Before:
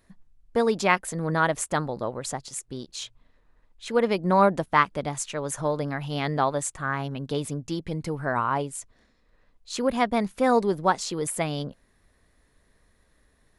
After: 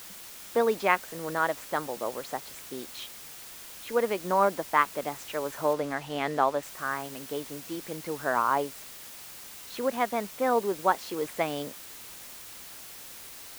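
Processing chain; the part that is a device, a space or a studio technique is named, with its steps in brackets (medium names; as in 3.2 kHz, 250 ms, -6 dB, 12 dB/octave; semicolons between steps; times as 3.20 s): shortwave radio (band-pass 310–2900 Hz; tremolo 0.34 Hz, depth 41%; white noise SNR 14 dB); 5.73–6.63 s: treble shelf 8.4 kHz -10.5 dB; trim +1 dB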